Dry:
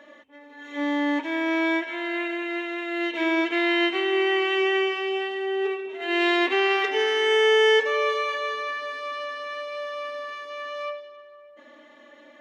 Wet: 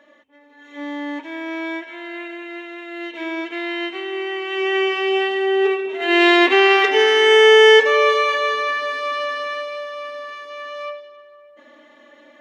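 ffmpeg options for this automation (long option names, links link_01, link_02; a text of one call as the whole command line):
ffmpeg -i in.wav -af "volume=8.5dB,afade=type=in:start_time=4.45:duration=0.74:silence=0.251189,afade=type=out:start_time=9.4:duration=0.46:silence=0.473151" out.wav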